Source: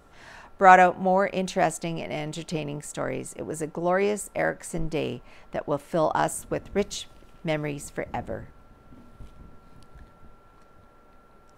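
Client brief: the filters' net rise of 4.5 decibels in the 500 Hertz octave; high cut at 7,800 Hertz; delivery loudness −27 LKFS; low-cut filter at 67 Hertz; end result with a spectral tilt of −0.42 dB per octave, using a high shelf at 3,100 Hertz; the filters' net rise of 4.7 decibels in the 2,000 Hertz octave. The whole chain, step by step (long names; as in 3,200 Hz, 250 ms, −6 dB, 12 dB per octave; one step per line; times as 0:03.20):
high-pass filter 67 Hz
low-pass filter 7,800 Hz
parametric band 500 Hz +5.5 dB
parametric band 2,000 Hz +9 dB
high-shelf EQ 3,100 Hz −9 dB
level −5 dB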